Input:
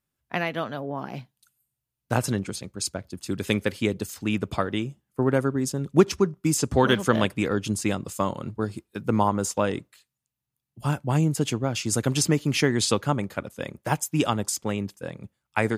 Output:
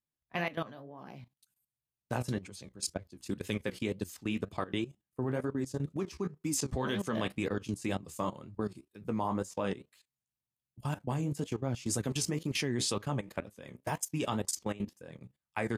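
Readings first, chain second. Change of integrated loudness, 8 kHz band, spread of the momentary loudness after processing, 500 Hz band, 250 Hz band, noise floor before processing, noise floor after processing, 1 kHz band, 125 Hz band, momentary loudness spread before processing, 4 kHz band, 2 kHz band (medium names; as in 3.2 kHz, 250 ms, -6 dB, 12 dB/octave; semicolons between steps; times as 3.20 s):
-10.0 dB, -8.5 dB, 10 LU, -11.0 dB, -9.5 dB, -85 dBFS, under -85 dBFS, -10.5 dB, -10.0 dB, 12 LU, -9.0 dB, -10.0 dB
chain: flange 2 Hz, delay 9.3 ms, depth 7.9 ms, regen +48%; level held to a coarse grid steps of 16 dB; band-stop 1.4 kHz, Q 11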